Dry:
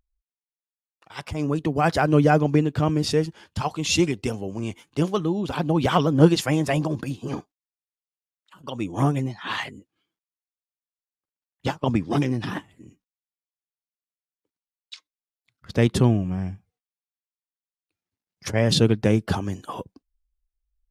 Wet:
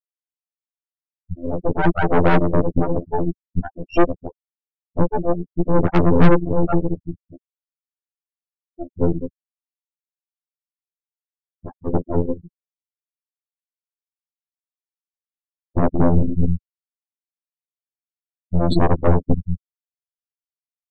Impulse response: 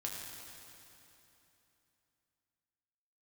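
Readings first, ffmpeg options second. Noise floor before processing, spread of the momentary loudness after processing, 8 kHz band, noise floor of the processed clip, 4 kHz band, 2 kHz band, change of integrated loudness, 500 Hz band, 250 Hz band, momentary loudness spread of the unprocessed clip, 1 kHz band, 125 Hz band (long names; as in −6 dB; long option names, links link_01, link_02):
below −85 dBFS, 16 LU, below −25 dB, below −85 dBFS, below −10 dB, −0.5 dB, +2.5 dB, +2.5 dB, +1.5 dB, 15 LU, +2.0 dB, +1.0 dB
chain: -filter_complex "[0:a]asplit=2[link_01][link_02];[1:a]atrim=start_sample=2205,highshelf=frequency=2000:gain=-7.5[link_03];[link_02][link_03]afir=irnorm=-1:irlink=0,volume=-7dB[link_04];[link_01][link_04]amix=inputs=2:normalize=0,afftfilt=real='re*gte(hypot(re,im),0.631)':imag='im*gte(hypot(re,im),0.631)':win_size=1024:overlap=0.75,afftfilt=real='hypot(re,im)*cos(PI*b)':imag='0':win_size=2048:overlap=0.75,aresample=11025,asoftclip=type=tanh:threshold=-13dB,aresample=44100,lowshelf=frequency=250:gain=8,aeval=exprs='0.447*(cos(1*acos(clip(val(0)/0.447,-1,1)))-cos(1*PI/2))+0.2*(cos(4*acos(clip(val(0)/0.447,-1,1)))-cos(4*PI/2))+0.0891*(cos(8*acos(clip(val(0)/0.447,-1,1)))-cos(8*PI/2))':channel_layout=same"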